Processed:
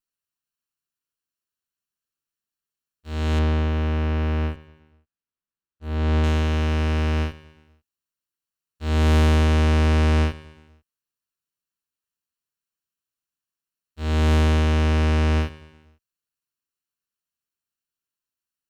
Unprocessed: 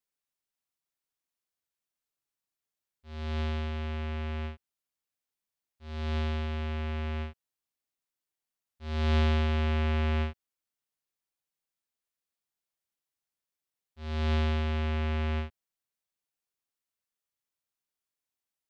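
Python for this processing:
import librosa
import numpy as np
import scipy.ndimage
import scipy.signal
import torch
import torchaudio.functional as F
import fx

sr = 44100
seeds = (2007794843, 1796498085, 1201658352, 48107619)

y = fx.lower_of_two(x, sr, delay_ms=0.7)
y = fx.lowpass(y, sr, hz=1700.0, slope=6, at=(3.39, 6.24))
y = fx.leveller(y, sr, passes=2)
y = fx.echo_feedback(y, sr, ms=123, feedback_pct=52, wet_db=-18)
y = F.gain(torch.from_numpy(y), 5.0).numpy()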